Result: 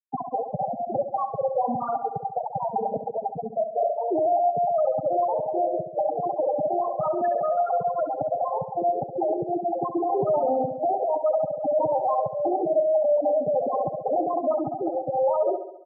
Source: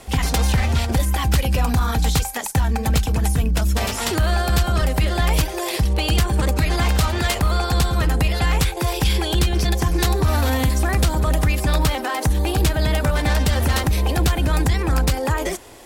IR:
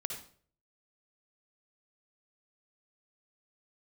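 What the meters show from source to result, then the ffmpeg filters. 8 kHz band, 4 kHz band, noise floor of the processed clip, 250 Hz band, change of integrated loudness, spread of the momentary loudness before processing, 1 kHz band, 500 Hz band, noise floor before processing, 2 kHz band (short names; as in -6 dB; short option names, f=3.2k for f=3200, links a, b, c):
under -40 dB, under -40 dB, -38 dBFS, -8.5 dB, -5.0 dB, 2 LU, +1.5 dB, +5.0 dB, -27 dBFS, under -30 dB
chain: -filter_complex "[0:a]highpass=280,asplit=2[a][b];[b]acrusher=bits=4:mix=0:aa=0.000001,volume=-9dB[c];[a][c]amix=inputs=2:normalize=0,equalizer=f=630:t=o:w=0.67:g=11,equalizer=f=2.5k:t=o:w=0.67:g=-11,equalizer=f=6.3k:t=o:w=0.67:g=-6,asplit=2[d][e];[1:a]atrim=start_sample=2205[f];[e][f]afir=irnorm=-1:irlink=0,volume=-6.5dB[g];[d][g]amix=inputs=2:normalize=0,aeval=exprs='1.19*(cos(1*acos(clip(val(0)/1.19,-1,1)))-cos(1*PI/2))+0.0335*(cos(7*acos(clip(val(0)/1.19,-1,1)))-cos(7*PI/2))':c=same,highshelf=f=4.9k:g=-9.5,asoftclip=type=hard:threshold=-14dB,afftfilt=real='re*gte(hypot(re,im),0.501)':imag='im*gte(hypot(re,im),0.501)':win_size=1024:overlap=0.75,aecho=1:1:68|136|204|272|340|408|476:0.335|0.188|0.105|0.0588|0.0329|0.0184|0.0103,volume=-3.5dB"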